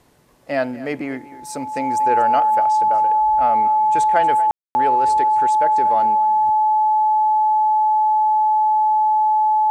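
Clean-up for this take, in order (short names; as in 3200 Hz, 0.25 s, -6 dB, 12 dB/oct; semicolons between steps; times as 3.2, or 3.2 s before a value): notch 860 Hz, Q 30; room tone fill 4.51–4.75; inverse comb 0.236 s -17 dB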